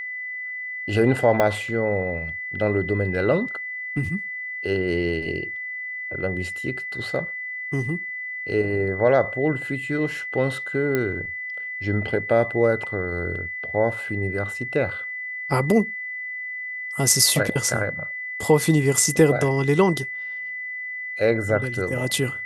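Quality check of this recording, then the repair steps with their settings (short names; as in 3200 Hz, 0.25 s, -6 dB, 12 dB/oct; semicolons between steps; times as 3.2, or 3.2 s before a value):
tone 2000 Hz -29 dBFS
1.4 pop -7 dBFS
10.95 pop -10 dBFS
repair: de-click; notch 2000 Hz, Q 30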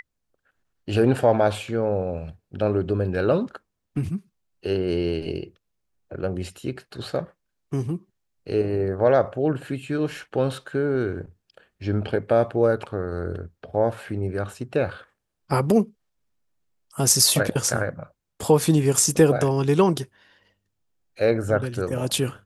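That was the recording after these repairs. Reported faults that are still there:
1.4 pop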